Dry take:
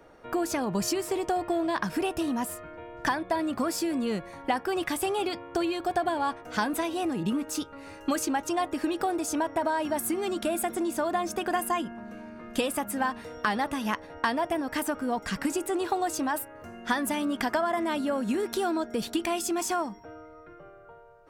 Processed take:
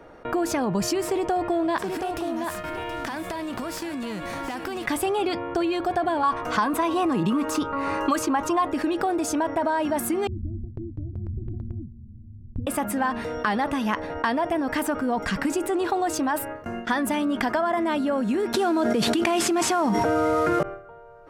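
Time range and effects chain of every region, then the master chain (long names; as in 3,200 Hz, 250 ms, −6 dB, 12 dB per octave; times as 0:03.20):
0:01.77–0:04.85: spectral envelope flattened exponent 0.6 + downward compressor 10 to 1, threshold −39 dBFS + single-tap delay 724 ms −10.5 dB
0:06.23–0:08.65: parametric band 1,100 Hz +13 dB 0.3 octaves + multiband upward and downward compressor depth 70%
0:10.27–0:12.67: inverse Chebyshev low-pass filter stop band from 900 Hz, stop band 70 dB + low shelf with overshoot 140 Hz +10.5 dB, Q 3
0:18.54–0:20.63: variable-slope delta modulation 64 kbit/s + high-pass filter 94 Hz + envelope flattener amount 100%
whole clip: high-shelf EQ 4,500 Hz −9.5 dB; noise gate with hold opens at −35 dBFS; envelope flattener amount 50%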